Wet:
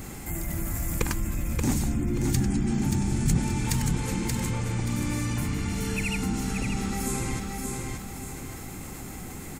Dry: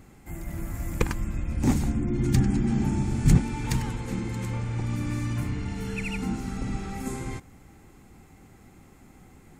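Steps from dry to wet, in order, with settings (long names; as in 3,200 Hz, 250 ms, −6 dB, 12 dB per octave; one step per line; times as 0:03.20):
high-shelf EQ 4,600 Hz +11 dB
on a send: repeating echo 580 ms, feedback 25%, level −7 dB
on the sum: envelope flattener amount 50%
level −6.5 dB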